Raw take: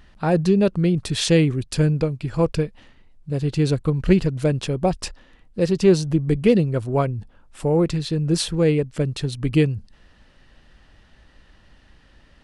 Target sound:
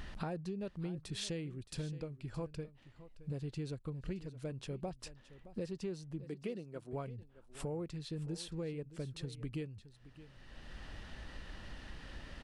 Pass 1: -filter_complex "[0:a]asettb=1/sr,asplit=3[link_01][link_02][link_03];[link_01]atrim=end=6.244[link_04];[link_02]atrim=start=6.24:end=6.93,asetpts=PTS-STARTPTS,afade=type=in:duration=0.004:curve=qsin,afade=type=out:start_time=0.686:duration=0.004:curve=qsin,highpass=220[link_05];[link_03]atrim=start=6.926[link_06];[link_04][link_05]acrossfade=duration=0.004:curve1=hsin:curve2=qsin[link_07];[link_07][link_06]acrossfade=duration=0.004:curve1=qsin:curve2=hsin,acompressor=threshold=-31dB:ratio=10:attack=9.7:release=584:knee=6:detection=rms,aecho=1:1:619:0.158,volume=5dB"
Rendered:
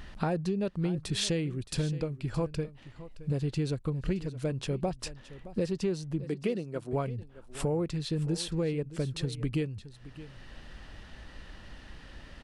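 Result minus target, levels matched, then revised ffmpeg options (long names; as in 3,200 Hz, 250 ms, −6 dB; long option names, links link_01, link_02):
downward compressor: peak gain reduction −10.5 dB
-filter_complex "[0:a]asettb=1/sr,asplit=3[link_01][link_02][link_03];[link_01]atrim=end=6.244[link_04];[link_02]atrim=start=6.24:end=6.93,asetpts=PTS-STARTPTS,afade=type=in:duration=0.004:curve=qsin,afade=type=out:start_time=0.686:duration=0.004:curve=qsin,highpass=220[link_05];[link_03]atrim=start=6.926[link_06];[link_04][link_05]acrossfade=duration=0.004:curve1=hsin:curve2=qsin[link_07];[link_07][link_06]acrossfade=duration=0.004:curve1=qsin:curve2=hsin,acompressor=threshold=-42.5dB:ratio=10:attack=9.7:release=584:knee=6:detection=rms,aecho=1:1:619:0.158,volume=5dB"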